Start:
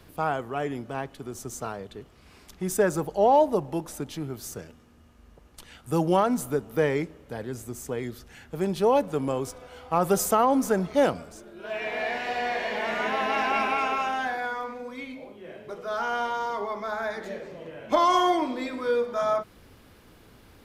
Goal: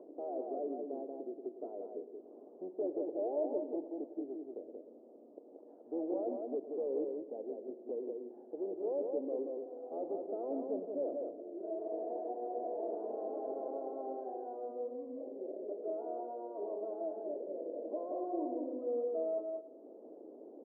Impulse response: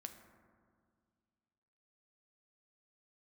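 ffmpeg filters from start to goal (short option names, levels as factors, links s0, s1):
-filter_complex "[0:a]acompressor=mode=upward:threshold=0.0355:ratio=2.5,asplit=2[s0][s1];[s1]asetrate=22050,aresample=44100,atempo=2,volume=0.355[s2];[s0][s2]amix=inputs=2:normalize=0,asoftclip=type=hard:threshold=0.0501,asuperpass=centerf=440:order=8:qfactor=1.1,aecho=1:1:181:0.631,asplit=2[s3][s4];[1:a]atrim=start_sample=2205,adelay=107[s5];[s4][s5]afir=irnorm=-1:irlink=0,volume=0.398[s6];[s3][s6]amix=inputs=2:normalize=0,volume=0.501"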